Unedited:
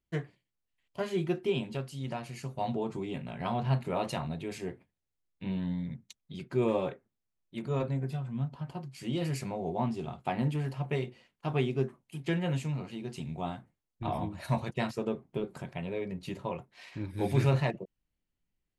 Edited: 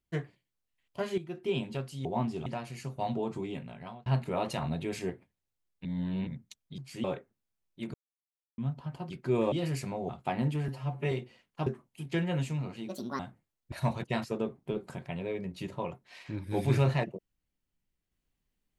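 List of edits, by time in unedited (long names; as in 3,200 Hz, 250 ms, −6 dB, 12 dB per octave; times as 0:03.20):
0:01.18–0:01.54: fade in quadratic, from −12.5 dB
0:03.04–0:03.65: fade out
0:04.21–0:04.69: clip gain +3 dB
0:05.44–0:05.86: reverse
0:06.37–0:06.79: swap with 0:08.85–0:09.11
0:07.69–0:08.33: silence
0:09.68–0:10.09: move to 0:02.05
0:10.68–0:10.97: time-stretch 1.5×
0:11.52–0:11.81: remove
0:13.03–0:13.50: play speed 153%
0:14.03–0:14.39: remove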